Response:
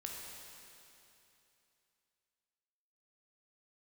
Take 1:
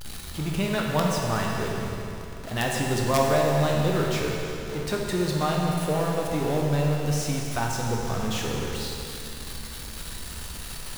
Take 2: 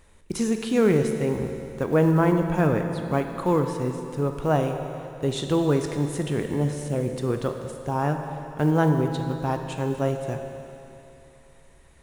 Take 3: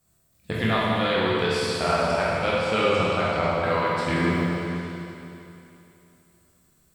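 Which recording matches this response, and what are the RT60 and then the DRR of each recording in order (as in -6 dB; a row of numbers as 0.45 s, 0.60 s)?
1; 2.9 s, 2.9 s, 2.9 s; -1.5 dB, 4.5 dB, -8.5 dB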